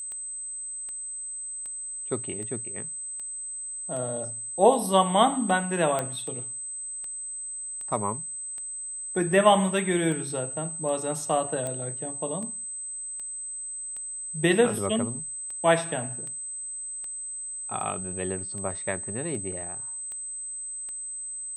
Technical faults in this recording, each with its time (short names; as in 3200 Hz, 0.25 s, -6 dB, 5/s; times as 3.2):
tick 78 rpm -28 dBFS
tone 8200 Hz -33 dBFS
5.99 pop -14 dBFS
11.67 pop -19 dBFS